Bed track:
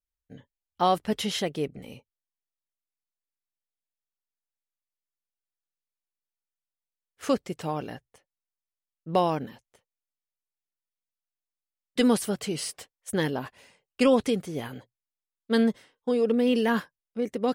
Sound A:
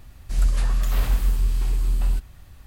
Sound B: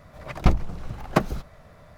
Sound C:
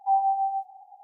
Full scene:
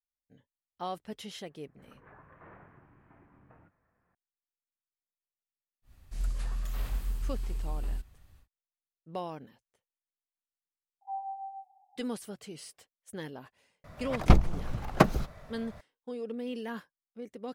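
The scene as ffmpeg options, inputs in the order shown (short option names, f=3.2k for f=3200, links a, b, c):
-filter_complex "[1:a]asplit=2[a][b];[0:a]volume=-14dB[c];[a]highpass=f=180:t=q:w=0.5412,highpass=f=180:t=q:w=1.307,lowpass=f=2k:t=q:w=0.5176,lowpass=f=2k:t=q:w=0.7071,lowpass=f=2k:t=q:w=1.932,afreqshift=-85,atrim=end=2.66,asetpts=PTS-STARTPTS,volume=-16dB,afade=t=in:d=0.004:c=hsin,afade=t=out:st=2.656:d=0.004:c=hsin,adelay=1490[d];[b]atrim=end=2.66,asetpts=PTS-STARTPTS,volume=-12.5dB,afade=t=in:d=0.1,afade=t=out:st=2.56:d=0.1,adelay=5820[e];[3:a]atrim=end=1.03,asetpts=PTS-STARTPTS,volume=-15dB,afade=t=in:d=0.004:c=hsin,afade=t=out:st=1.026:d=0.004:c=hsin,adelay=11010[f];[2:a]atrim=end=1.97,asetpts=PTS-STARTPTS,volume=-0.5dB,afade=t=in:d=0.004:c=hsin,afade=t=out:st=1.966:d=0.004:c=hsin,adelay=13840[g];[c][d][e][f][g]amix=inputs=5:normalize=0"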